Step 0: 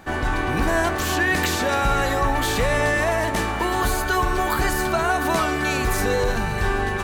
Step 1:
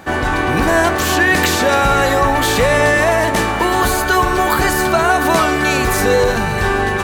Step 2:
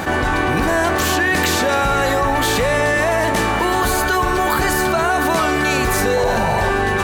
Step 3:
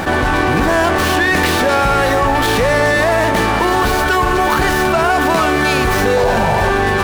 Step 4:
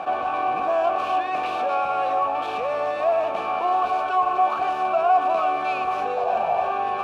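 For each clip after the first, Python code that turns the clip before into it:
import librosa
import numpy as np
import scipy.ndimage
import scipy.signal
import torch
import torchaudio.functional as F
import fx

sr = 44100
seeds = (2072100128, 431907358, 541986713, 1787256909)

y1 = fx.highpass(x, sr, hz=77.0, slope=6)
y1 = fx.peak_eq(y1, sr, hz=520.0, db=2.5, octaves=0.32)
y1 = F.gain(torch.from_numpy(y1), 7.5).numpy()
y2 = fx.spec_paint(y1, sr, seeds[0], shape='noise', start_s=6.16, length_s=0.55, low_hz=500.0, high_hz=1000.0, level_db=-19.0)
y2 = fx.env_flatten(y2, sr, amount_pct=70)
y2 = F.gain(torch.from_numpy(y2), -5.0).numpy()
y3 = fx.running_max(y2, sr, window=5)
y3 = F.gain(torch.from_numpy(y3), 3.5).numpy()
y4 = fx.vowel_filter(y3, sr, vowel='a')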